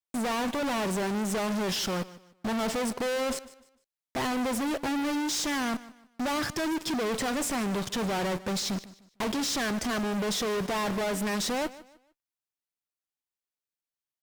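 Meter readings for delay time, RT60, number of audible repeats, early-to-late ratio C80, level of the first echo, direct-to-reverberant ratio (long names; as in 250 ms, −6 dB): 151 ms, no reverb audible, 2, no reverb audible, −18.0 dB, no reverb audible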